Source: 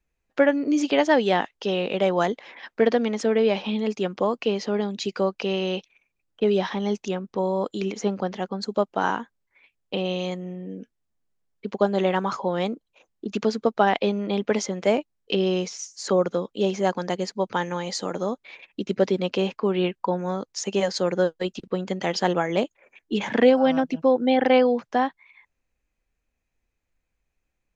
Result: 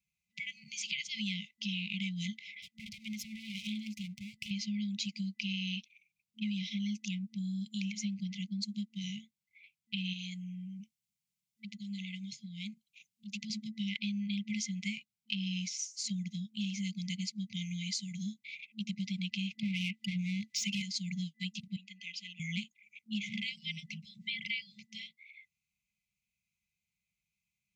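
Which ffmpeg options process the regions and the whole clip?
ffmpeg -i in.wav -filter_complex "[0:a]asettb=1/sr,asplit=3[link_01][link_02][link_03];[link_01]atrim=end=2.624[link_04];[link_02]atrim=start=2.62:end=4.51,asetpts=PTS-STARTPTS,afade=type=in:duration=0.004:curve=qsin,afade=type=out:start_time=1.886:duration=0.004:curve=qsin,acompressor=threshold=-23dB:ratio=3:attack=3.2:release=140:knee=1:detection=peak,aeval=exprs='max(val(0),0)':channel_layout=same[link_05];[link_03]atrim=start=4.506[link_06];[link_04][link_05]acrossfade=duration=0.004:curve1=hsin:curve2=qsin[link_07];[link_07][link_06]acrossfade=duration=0.004:curve1=qsin:curve2=hsin,asettb=1/sr,asplit=3[link_08][link_09][link_10];[link_08]atrim=end=10.134[link_11];[link_09]atrim=start=10.13:end=13.5,asetpts=PTS-STARTPTS,afade=type=in:duration=0.004:curve=qsin,afade=type=out:start_time=3.366:duration=0.004:curve=qsin,highshelf=frequency=3700:gain=5.5,acompressor=threshold=-37dB:ratio=2:attack=3.2:release=140:knee=1:detection=peak[link_12];[link_10]atrim=start=13.496[link_13];[link_11][link_12]acrossfade=duration=0.004:curve1=hsin:curve2=qsin[link_14];[link_14][link_13]acrossfade=duration=0.004:curve1=qsin:curve2=hsin,asettb=1/sr,asplit=3[link_15][link_16][link_17];[link_15]atrim=end=19.594[link_18];[link_16]atrim=start=19.59:end=20.82,asetpts=PTS-STARTPTS,afade=type=in:duration=0.004:curve=qsin,afade=type=out:start_time=1.226:duration=0.004:curve=qsin,acontrast=53,asplit=2[link_19][link_20];[link_20]highpass=frequency=720:poles=1,volume=23dB,asoftclip=type=tanh:threshold=-7dB[link_21];[link_19][link_21]amix=inputs=2:normalize=0,lowpass=frequency=1300:poles=1,volume=-6dB[link_22];[link_17]atrim=start=20.816[link_23];[link_18][link_22]acrossfade=duration=0.004:curve1=hsin:curve2=qsin[link_24];[link_24][link_23]acrossfade=duration=0.004:curve1=qsin:curve2=hsin,asettb=1/sr,asplit=3[link_25][link_26][link_27];[link_25]atrim=end=21.764[link_28];[link_26]atrim=start=21.76:end=22.4,asetpts=PTS-STARTPTS,afade=type=in:duration=0.004:curve=qsin,afade=type=out:start_time=0.636:duration=0.004:curve=qsin,bass=frequency=250:gain=-6,treble=frequency=4000:gain=9,acontrast=35,asplit=3[link_29][link_30][link_31];[link_29]bandpass=frequency=530:width_type=q:width=8,volume=0dB[link_32];[link_30]bandpass=frequency=1840:width_type=q:width=8,volume=-6dB[link_33];[link_31]bandpass=frequency=2480:width_type=q:width=8,volume=-9dB[link_34];[link_32][link_33][link_34]amix=inputs=3:normalize=0[link_35];[link_27]atrim=start=22.396[link_36];[link_28][link_35]acrossfade=duration=0.004:curve1=hsin:curve2=qsin[link_37];[link_37][link_36]acrossfade=duration=0.004:curve1=qsin:curve2=hsin,afftfilt=real='re*(1-between(b*sr/4096,220,2000))':imag='im*(1-between(b*sr/4096,220,2000))':win_size=4096:overlap=0.75,highpass=150,acompressor=threshold=-32dB:ratio=4,volume=-1.5dB" out.wav

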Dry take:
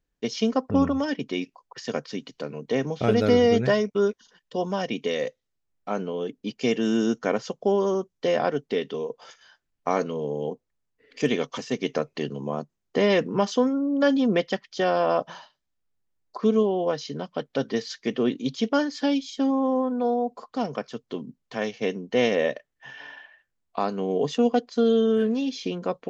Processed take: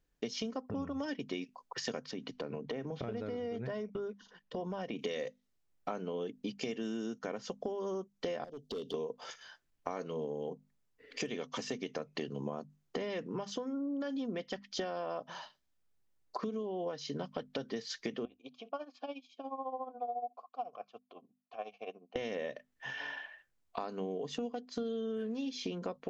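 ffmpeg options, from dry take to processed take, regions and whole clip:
ffmpeg -i in.wav -filter_complex "[0:a]asettb=1/sr,asplit=3[link_01][link_02][link_03];[link_01]atrim=end=2.114[link_04];[link_02]atrim=start=2.11:end=4.99,asetpts=PTS-STARTPTS,afade=type=in:duration=0.004:curve=qsin,afade=type=out:start_time=2.876:duration=0.004:curve=qsin,aemphasis=mode=reproduction:type=75fm,acompressor=threshold=-35dB:ratio=4:attack=3.2:release=140:knee=1:detection=peak[link_05];[link_03]atrim=start=4.986[link_06];[link_04][link_05]acrossfade=duration=0.004:curve1=hsin:curve2=qsin[link_07];[link_07][link_06]acrossfade=duration=0.004:curve1=qsin:curve2=hsin,asettb=1/sr,asplit=3[link_08][link_09][link_10];[link_08]atrim=end=8.444[link_11];[link_09]atrim=start=8.44:end=8.94,asetpts=PTS-STARTPTS,afade=type=in:duration=0.004:curve=qsin,afade=type=out:start_time=0.496:duration=0.004:curve=qsin,asuperstop=centerf=1500:order=12:qfactor=0.64,acompressor=threshold=-37dB:ratio=4:attack=3.2:release=140:knee=1:detection=peak,volume=35dB,asoftclip=hard,volume=-35dB[link_12];[link_10]atrim=start=8.936[link_13];[link_11][link_12]acrossfade=duration=0.004:curve1=hsin:curve2=qsin[link_14];[link_14][link_13]acrossfade=duration=0.004:curve1=qsin:curve2=hsin,asettb=1/sr,asplit=3[link_15][link_16][link_17];[link_15]atrim=end=18.254[link_18];[link_16]atrim=start=18.25:end=22.16,asetpts=PTS-STARTPTS,afade=type=in:duration=0.004:curve=qsin,afade=type=out:start_time=3.906:duration=0.004:curve=qsin,asplit=3[link_19][link_20][link_21];[link_19]bandpass=frequency=730:width_type=q:width=8,volume=0dB[link_22];[link_20]bandpass=frequency=1090:width_type=q:width=8,volume=-6dB[link_23];[link_21]bandpass=frequency=2440:width_type=q:width=8,volume=-9dB[link_24];[link_22][link_23][link_24]amix=inputs=3:normalize=0,tremolo=f=14:d=0.79[link_25];[link_17]atrim=start=22.156[link_26];[link_18][link_25]acrossfade=duration=0.004:curve1=hsin:curve2=qsin[link_27];[link_27][link_26]acrossfade=duration=0.004:curve1=qsin:curve2=hsin,alimiter=limit=-17dB:level=0:latency=1:release=266,acompressor=threshold=-35dB:ratio=12,bandreject=frequency=50:width_type=h:width=6,bandreject=frequency=100:width_type=h:width=6,bandreject=frequency=150:width_type=h:width=6,bandreject=frequency=200:width_type=h:width=6,bandreject=frequency=250:width_type=h:width=6,volume=1dB" out.wav

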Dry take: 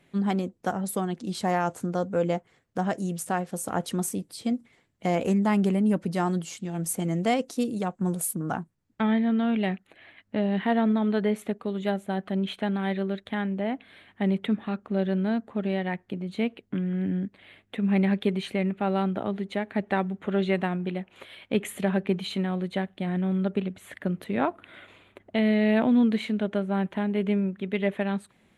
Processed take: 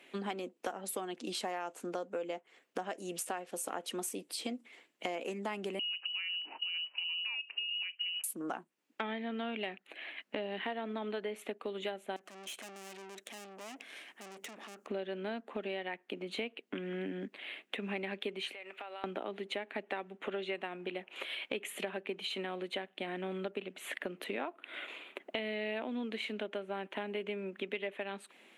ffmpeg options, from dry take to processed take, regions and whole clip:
ffmpeg -i in.wav -filter_complex "[0:a]asettb=1/sr,asplit=3[link_01][link_02][link_03];[link_01]atrim=end=5.794[link_04];[link_02]atrim=start=5.79:end=8.24,asetpts=PTS-STARTPTS,afade=type=in:duration=0.004:curve=qsin,afade=type=out:start_time=2.446:duration=0.004:curve=qsin,acompressor=threshold=-34dB:ratio=6:attack=3.2:release=140:knee=1:detection=peak,lowpass=frequency=2600:width_type=q:width=0.5098,lowpass=frequency=2600:width_type=q:width=0.6013,lowpass=frequency=2600:width_type=q:width=0.9,lowpass=frequency=2600:width_type=q:width=2.563,afreqshift=-3100[link_05];[link_03]atrim=start=8.236[link_06];[link_04][link_05]acrossfade=duration=0.004:curve1=hsin:curve2=qsin[link_07];[link_07][link_06]acrossfade=duration=0.004:curve1=qsin:curve2=hsin,asettb=1/sr,asplit=3[link_08][link_09][link_10];[link_08]atrim=end=12.164[link_11];[link_09]atrim=start=12.16:end=14.87,asetpts=PTS-STARTPTS,afade=type=in:duration=0.004:curve=qsin,afade=type=out:start_time=2.706:duration=0.004:curve=qsin,aeval=exprs='(tanh(100*val(0)+0.6)-tanh(0.6))/100':channel_layout=same,highshelf=frequency=5000:width_type=q:width=1.5:gain=9,acompressor=threshold=-47dB:ratio=2.5:attack=3.2:release=140:knee=1:detection=peak[link_12];[link_10]atrim=start=14.866[link_13];[link_11][link_12]acrossfade=duration=0.004:curve1=hsin:curve2=qsin[link_14];[link_14][link_13]acrossfade=duration=0.004:curve1=qsin:curve2=hsin,asettb=1/sr,asplit=3[link_15][link_16][link_17];[link_15]atrim=end=18.534[link_18];[link_16]atrim=start=18.53:end=19.04,asetpts=PTS-STARTPTS,afade=type=in:duration=0.004:curve=qsin,afade=type=out:start_time=0.506:duration=0.004:curve=qsin,highpass=710,acompressor=threshold=-45dB:ratio=8:attack=3.2:release=140:knee=1:detection=peak[link_19];[link_17]atrim=start=19.036[link_20];[link_18][link_19]acrossfade=duration=0.004:curve1=hsin:curve2=qsin[link_21];[link_21][link_20]acrossfade=duration=0.004:curve1=qsin:curve2=hsin,highpass=frequency=290:width=0.5412,highpass=frequency=290:width=1.3066,equalizer=frequency=2700:width_type=o:width=0.64:gain=8,acompressor=threshold=-39dB:ratio=6,volume=3dB" out.wav

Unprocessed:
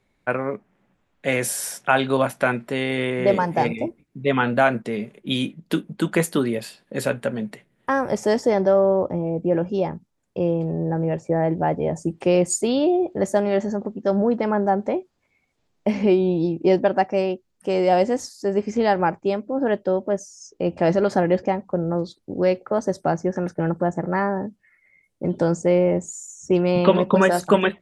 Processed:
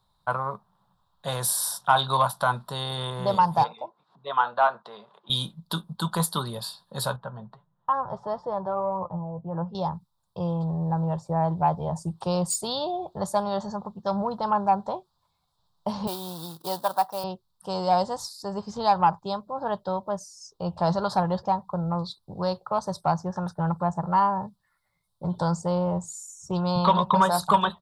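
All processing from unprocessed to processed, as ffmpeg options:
ffmpeg -i in.wav -filter_complex "[0:a]asettb=1/sr,asplit=3[link_01][link_02][link_03];[link_01]atrim=end=3.644[link_04];[link_02]atrim=start=3.64:end=5.3,asetpts=PTS-STARTPTS,afade=type=in:duration=0.004:curve=qsin,afade=type=out:start_time=1.656:duration=0.004:curve=qsin,acompressor=mode=upward:threshold=-31dB:ratio=2.5:attack=3.2:release=140:knee=2.83:detection=peak,highpass=540,lowpass=2500[link_05];[link_03]atrim=start=5.296[link_06];[link_04][link_05]acrossfade=duration=0.004:curve1=hsin:curve2=qsin[link_07];[link_07][link_06]acrossfade=duration=0.004:curve1=qsin:curve2=hsin,asettb=1/sr,asplit=3[link_08][link_09][link_10];[link_08]atrim=end=7.164[link_11];[link_09]atrim=start=7.16:end=9.75,asetpts=PTS-STARTPTS,afade=type=in:duration=0.004:curve=qsin,afade=type=out:start_time=2.586:duration=0.004:curve=qsin,lowpass=1600,flanger=delay=5.5:depth=2.6:regen=49:speed=1.6:shape=triangular[link_12];[link_10]atrim=start=9.746[link_13];[link_11][link_12]acrossfade=duration=0.004:curve1=hsin:curve2=qsin[link_14];[link_14][link_13]acrossfade=duration=0.004:curve1=qsin:curve2=hsin,asettb=1/sr,asplit=3[link_15][link_16][link_17];[link_15]atrim=end=16.074[link_18];[link_16]atrim=start=16.07:end=17.24,asetpts=PTS-STARTPTS,afade=type=in:duration=0.004:curve=qsin,afade=type=out:start_time=1.166:duration=0.004:curve=qsin,bandreject=frequency=4000:width=7,acrusher=bits=6:mode=log:mix=0:aa=0.000001,highpass=frequency=680:poles=1[link_19];[link_17]atrim=start=17.236[link_20];[link_18][link_19]acrossfade=duration=0.004:curve1=hsin:curve2=qsin[link_21];[link_21][link_20]acrossfade=duration=0.004:curve1=qsin:curve2=hsin,firequalizer=gain_entry='entry(170,0);entry(260,-19);entry(1000,10);entry(2200,-24);entry(3700,11);entry(8500,6)':delay=0.05:min_phase=1,acontrast=46,equalizer=frequency=6400:width_type=o:width=0.63:gain=-13.5,volume=-6.5dB" out.wav

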